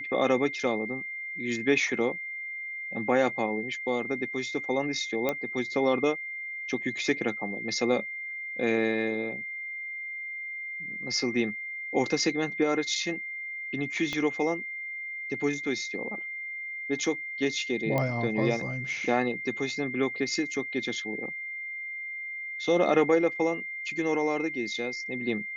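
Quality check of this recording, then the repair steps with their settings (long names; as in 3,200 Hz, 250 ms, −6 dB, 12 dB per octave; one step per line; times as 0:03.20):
whistle 2,100 Hz −34 dBFS
0:05.29: click −13 dBFS
0:14.13: click −18 dBFS
0:17.98: click −15 dBFS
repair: click removal
notch filter 2,100 Hz, Q 30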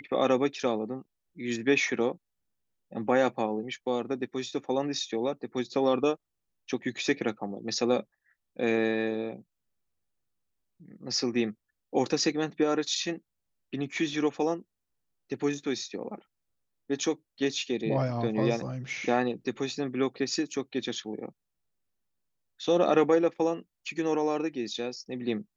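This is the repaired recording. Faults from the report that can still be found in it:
0:14.13: click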